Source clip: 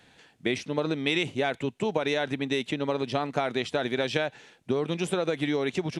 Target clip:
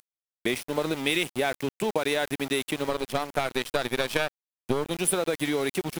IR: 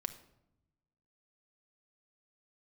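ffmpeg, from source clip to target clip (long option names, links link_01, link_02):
-filter_complex "[0:a]aexciter=amount=8.8:drive=9.2:freq=9600,asplit=2[link_01][link_02];[link_02]acompressor=threshold=-35dB:ratio=16,volume=-3dB[link_03];[link_01][link_03]amix=inputs=2:normalize=0,lowshelf=frequency=130:gain=-9.5,aeval=exprs='val(0)*gte(abs(val(0)),0.0237)':channel_layout=same,asettb=1/sr,asplit=3[link_04][link_05][link_06];[link_04]atrim=end=2.894[link_07];[link_05]atrim=start=2.89:end=4.91,asetpts=PTS-STARTPTS,afade=type=in:duration=0.004:curve=qsin,afade=type=out:start_time=2.016:duration=0.004:curve=qsin,aeval=exprs='0.316*(cos(1*acos(clip(val(0)/0.316,-1,1)))-cos(1*PI/2))+0.0501*(cos(5*acos(clip(val(0)/0.316,-1,1)))-cos(5*PI/2))+0.0398*(cos(6*acos(clip(val(0)/0.316,-1,1)))-cos(6*PI/2))+0.0562*(cos(7*acos(clip(val(0)/0.316,-1,1)))-cos(7*PI/2))':channel_layout=same[link_08];[link_06]atrim=start=4.906[link_09];[link_07][link_08]acrossfade=duration=0.004:curve1=hsin:curve2=qsin[link_10];[link_10][link_09]acrossfade=duration=0.004:curve1=qsin:curve2=hsin"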